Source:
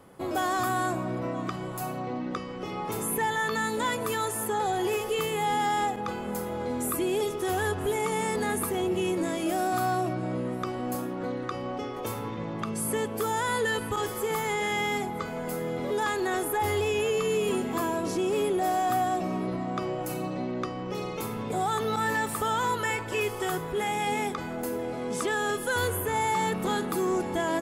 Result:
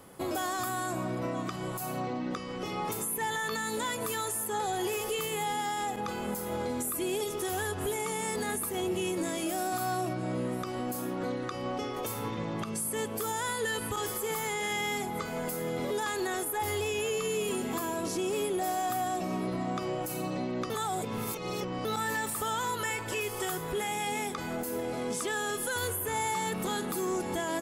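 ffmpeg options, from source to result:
-filter_complex "[0:a]asplit=3[a][b][c];[a]atrim=end=20.702[d];[b]atrim=start=20.698:end=21.852,asetpts=PTS-STARTPTS,areverse[e];[c]atrim=start=21.848[f];[d][e]acrossfade=d=0.004:c1=hsin:c2=hsin[g];[g][f]acrossfade=d=0.004:c1=hsin:c2=hsin,highshelf=f=3.7k:g=9,alimiter=level_in=0.5dB:limit=-24dB:level=0:latency=1:release=185,volume=-0.5dB"

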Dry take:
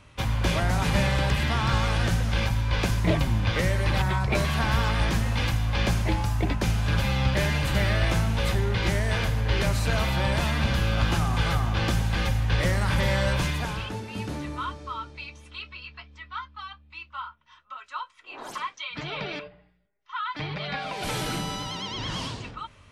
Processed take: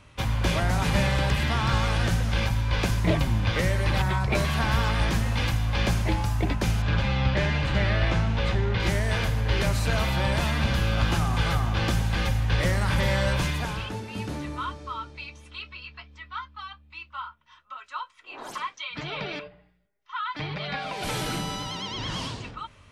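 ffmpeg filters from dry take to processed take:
-filter_complex "[0:a]asettb=1/sr,asplit=3[a][b][c];[a]atrim=end=6.824[d];[b]atrim=start=6.82:end=8.8,asetpts=PTS-STARTPTS,afade=t=in:d=0.004:c=qsin,afade=t=out:st=1.976:d=0.004:c=qsin,lowpass=4.4k[e];[c]atrim=start=8.796[f];[d][e]acrossfade=d=0.004:c1=hsin:c2=qsin[g];[g][f]acrossfade=d=0.004:c1=qsin:c2=hsin"

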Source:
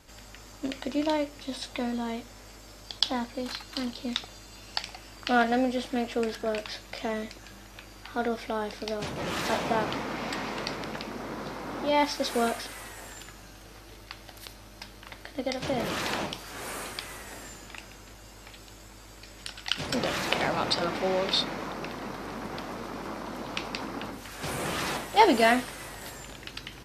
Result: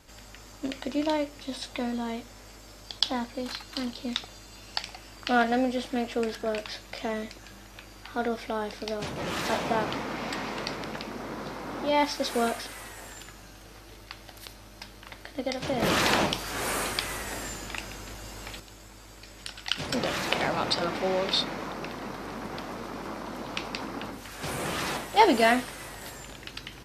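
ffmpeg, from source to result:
-filter_complex "[0:a]asettb=1/sr,asplit=3[a][b][c];[a]atrim=end=15.824[d];[b]atrim=start=15.82:end=18.6,asetpts=PTS-STARTPTS,afade=t=in:d=0.004:c=qsin,afade=t=out:st=2.776:d=0.004:c=qsin,acontrast=87[e];[c]atrim=start=18.596[f];[d][e]acrossfade=d=0.004:c1=hsin:c2=qsin[g];[g][f]acrossfade=d=0.004:c1=qsin:c2=hsin"

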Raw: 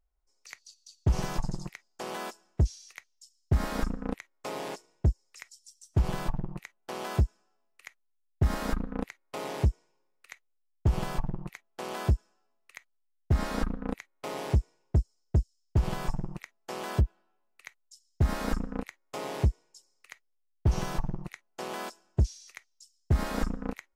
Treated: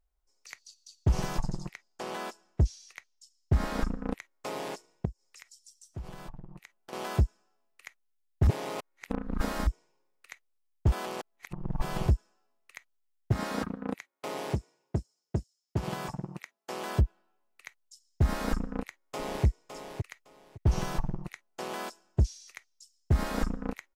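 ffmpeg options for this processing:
-filter_complex "[0:a]asettb=1/sr,asplit=3[a][b][c];[a]atrim=end=1.464[d];[b]atrim=start=1.46:end=4.06,asetpts=PTS-STARTPTS,afade=t=in:d=0.004:c=qsin,afade=t=out:st=2.596:d=0.004:c=qsin,highshelf=f=8.7k:g=-6.5[e];[c]atrim=start=4.056[f];[d][e]acrossfade=d=0.004:c1=hsin:c2=qsin[g];[g][f]acrossfade=d=0.004:c1=qsin:c2=hsin,asettb=1/sr,asplit=3[h][i][j];[h]atrim=end=5.054[k];[i]atrim=start=5.05:end=6.93,asetpts=PTS-STARTPTS,afade=t=in:d=0.004:c=qsin,afade=t=out:st=1.876:d=0.004:c=qsin,acompressor=threshold=-49dB:ratio=2:attack=3.2:release=140:knee=1:detection=peak[l];[j]atrim=start=6.926[m];[k][l]acrossfade=d=0.004:c1=hsin:c2=qsin[n];[n][m]acrossfade=d=0.004:c1=qsin:c2=hsin,asettb=1/sr,asplit=3[o][p][q];[o]atrim=end=13.324[r];[p]atrim=start=13.32:end=16.86,asetpts=PTS-STARTPTS,afade=t=in:d=0.004:c=qsin,afade=t=out:st=3.536:d=0.004:c=qsin,highpass=130[s];[q]atrim=start=16.856[t];[r][s]acrossfade=d=0.004:c1=hsin:c2=qsin[u];[u][t]acrossfade=d=0.004:c1=qsin:c2=hsin,asplit=2[v][w];[w]afade=t=in:st=18.63:d=0.01,afade=t=out:st=19.45:d=0.01,aecho=0:1:560|1120|1680:0.421697|0.0843393|0.0168679[x];[v][x]amix=inputs=2:normalize=0,asplit=5[y][z][aa][ab][ac];[y]atrim=end=8.472[ad];[z]atrim=start=8.468:end=9.672,asetpts=PTS-STARTPTS,areverse[ae];[aa]atrim=start=9.668:end=10.922[af];[ab]atrim=start=10.918:end=12.082,asetpts=PTS-STARTPTS,areverse[ag];[ac]atrim=start=12.078[ah];[ad][ae]acrossfade=d=0.004:c1=hsin:c2=hsin[ai];[ai][af]acrossfade=d=0.004:c1=hsin:c2=hsin[aj];[aj][ag]acrossfade=d=0.004:c1=hsin:c2=hsin[ak];[ak][ah]acrossfade=d=0.004:c1=hsin:c2=hsin"

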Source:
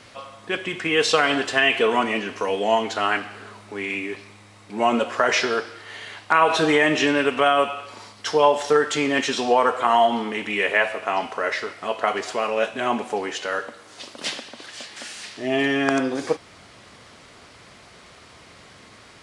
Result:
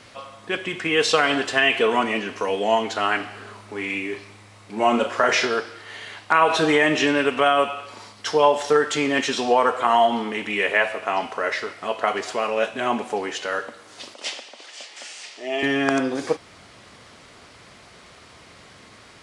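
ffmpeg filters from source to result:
-filter_complex "[0:a]asettb=1/sr,asplit=3[a][b][c];[a]atrim=end=3.164[d];[b]atrim=start=3.16:end=5.47,asetpts=PTS-STARTPTS,afade=t=in:d=0.004:c=qsin,afade=t=out:st=2.306:d=0.004:c=qsin,asplit=2[e][f];[f]adelay=37,volume=-7dB[g];[e][g]amix=inputs=2:normalize=0,atrim=end_sample=101871[h];[c]atrim=start=5.466[i];[d][h]acrossfade=d=0.004:c1=hsin:c2=qsin[j];[j][i]acrossfade=d=0.004:c1=qsin:c2=hsin,asettb=1/sr,asplit=3[k][l][m];[k]atrim=end=14.144[n];[l]atrim=start=14.14:end=15.63,asetpts=PTS-STARTPTS,afade=t=in:d=0.004:c=qsin,afade=t=out:st=1.486:d=0.004:c=qsin,highpass=490,equalizer=f=1.1k:t=q:w=4:g=-4,equalizer=f=1.6k:t=q:w=4:g=-7,equalizer=f=4k:t=q:w=4:g=-4,lowpass=f=8.7k:w=0.5412,lowpass=f=8.7k:w=1.3066[o];[m]atrim=start=15.626[p];[n][o]acrossfade=d=0.004:c1=hsin:c2=qsin[q];[q][p]acrossfade=d=0.004:c1=qsin:c2=hsin"

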